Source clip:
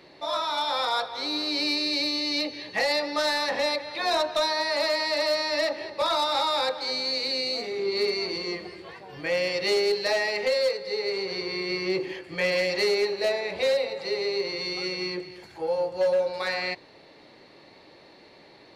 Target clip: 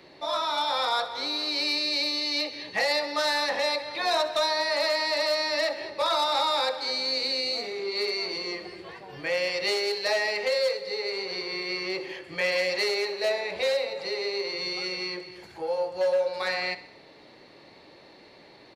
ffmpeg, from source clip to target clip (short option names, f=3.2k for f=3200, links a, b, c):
-filter_complex "[0:a]acrossover=split=440|1900[a][b][c];[a]acompressor=threshold=-42dB:ratio=6[d];[d][b][c]amix=inputs=3:normalize=0,aecho=1:1:65|130|195|260|325:0.158|0.0872|0.0479|0.0264|0.0145"